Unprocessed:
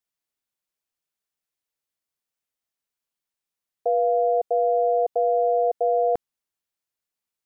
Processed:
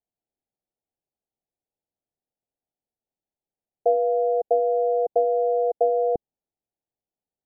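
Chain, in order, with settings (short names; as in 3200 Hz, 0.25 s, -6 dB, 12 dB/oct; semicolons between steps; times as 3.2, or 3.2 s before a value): treble ducked by the level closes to 460 Hz, closed at -17.5 dBFS; elliptic low-pass 820 Hz; gain +4.5 dB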